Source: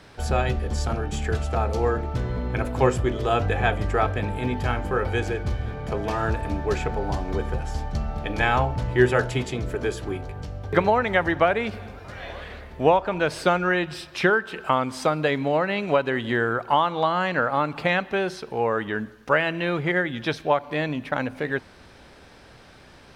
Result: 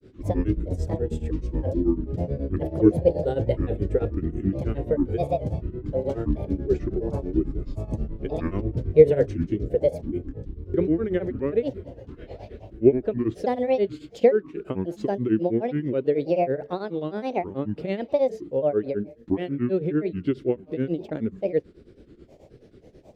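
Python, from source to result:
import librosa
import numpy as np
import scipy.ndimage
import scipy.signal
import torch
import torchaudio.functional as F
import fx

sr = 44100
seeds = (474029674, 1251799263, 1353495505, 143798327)

y = fx.low_shelf_res(x, sr, hz=610.0, db=13.5, q=3.0)
y = fx.granulator(y, sr, seeds[0], grain_ms=143.0, per_s=9.3, spray_ms=15.0, spread_st=7)
y = F.gain(torch.from_numpy(y), -12.5).numpy()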